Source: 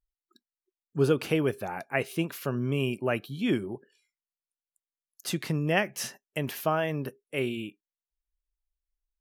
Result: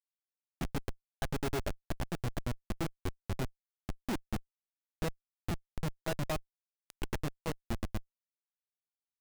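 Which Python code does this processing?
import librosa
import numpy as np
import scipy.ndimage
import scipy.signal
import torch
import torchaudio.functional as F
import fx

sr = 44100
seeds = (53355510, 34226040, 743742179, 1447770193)

y = fx.granulator(x, sr, seeds[0], grain_ms=99.0, per_s=8.6, spray_ms=817.0, spread_st=0)
y = fx.schmitt(y, sr, flips_db=-33.5)
y = y * 10.0 ** (5.0 / 20.0)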